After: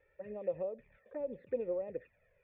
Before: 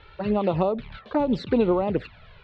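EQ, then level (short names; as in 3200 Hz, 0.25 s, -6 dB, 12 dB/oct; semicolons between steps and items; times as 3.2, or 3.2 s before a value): vocal tract filter e; -7.0 dB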